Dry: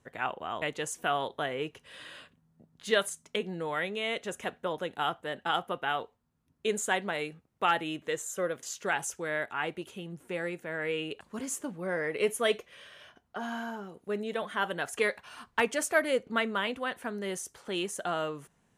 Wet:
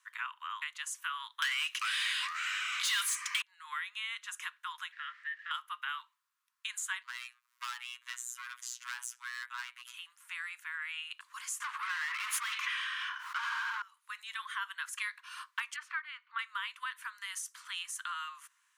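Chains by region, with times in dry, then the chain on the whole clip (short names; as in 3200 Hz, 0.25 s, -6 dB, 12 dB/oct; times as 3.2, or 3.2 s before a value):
1.42–3.42 tilt shelf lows -9.5 dB, about 1400 Hz + overdrive pedal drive 29 dB, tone 5900 Hz, clips at -10 dBFS + echoes that change speed 0.393 s, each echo -4 st, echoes 2, each echo -6 dB
4.92–5.51 zero-crossing step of -43.5 dBFS + ladder band-pass 1900 Hz, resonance 80% + notch 1500 Hz, Q 16
7.03–9.94 overloaded stage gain 31.5 dB + upward compressor, threshold -54 dBFS + robotiser 122 Hz
11.6–13.82 overdrive pedal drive 35 dB, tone 1100 Hz, clips at -13.5 dBFS + sustainer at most 29 dB/s
15.76–16.39 air absorption 360 m + upward compressor, threshold -37 dBFS
whole clip: steep high-pass 1000 Hz 96 dB/oct; compressor 2.5:1, threshold -42 dBFS; gain +3.5 dB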